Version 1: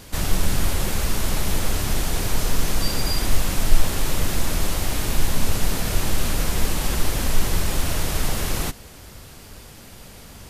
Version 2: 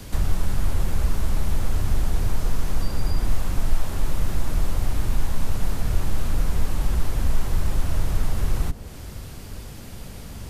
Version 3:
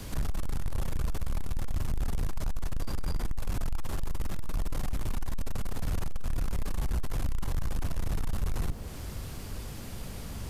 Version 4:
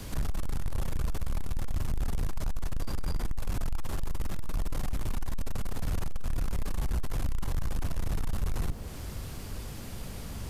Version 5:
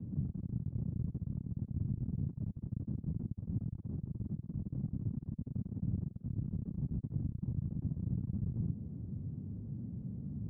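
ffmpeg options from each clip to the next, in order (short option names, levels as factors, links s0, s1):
-filter_complex "[0:a]lowshelf=f=280:g=8,acrossover=split=660|1400[s0][s1][s2];[s0]acompressor=threshold=0.178:ratio=4[s3];[s1]acompressor=threshold=0.01:ratio=4[s4];[s2]acompressor=threshold=0.00708:ratio=4[s5];[s3][s4][s5]amix=inputs=3:normalize=0,acrossover=split=120|1000[s6][s7][s8];[s7]alimiter=level_in=2.11:limit=0.0631:level=0:latency=1:release=29,volume=0.473[s9];[s6][s9][s8]amix=inputs=3:normalize=0"
-af "equalizer=f=1100:w=5.9:g=2,acrusher=bits=10:mix=0:aa=0.000001,asoftclip=type=tanh:threshold=0.075,volume=0.841"
-af anull
-af "asuperpass=centerf=160:order=4:qfactor=1.1,volume=1.58"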